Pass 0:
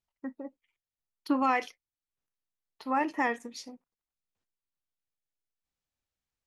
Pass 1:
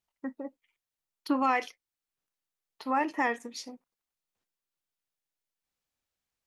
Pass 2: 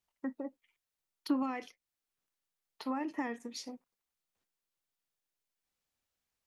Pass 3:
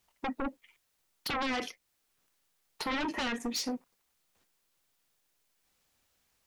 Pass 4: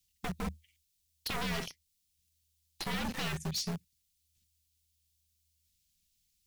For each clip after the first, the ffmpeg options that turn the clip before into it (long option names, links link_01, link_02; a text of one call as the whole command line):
ffmpeg -i in.wav -filter_complex "[0:a]lowshelf=frequency=140:gain=-7.5,asplit=2[link_01][link_02];[link_02]alimiter=level_in=0.5dB:limit=-24dB:level=0:latency=1:release=465,volume=-0.5dB,volume=-2dB[link_03];[link_01][link_03]amix=inputs=2:normalize=0,volume=-2dB" out.wav
ffmpeg -i in.wav -filter_complex "[0:a]acrossover=split=320[link_01][link_02];[link_02]acompressor=threshold=-40dB:ratio=4[link_03];[link_01][link_03]amix=inputs=2:normalize=0" out.wav
ffmpeg -i in.wav -af "aeval=exprs='0.0891*sin(PI/2*7.08*val(0)/0.0891)':channel_layout=same,volume=-8dB" out.wav
ffmpeg -i in.wav -filter_complex "[0:a]afreqshift=-78,acrossover=split=220|2800[link_01][link_02][link_03];[link_02]acrusher=bits=4:dc=4:mix=0:aa=0.000001[link_04];[link_01][link_04][link_03]amix=inputs=3:normalize=0" out.wav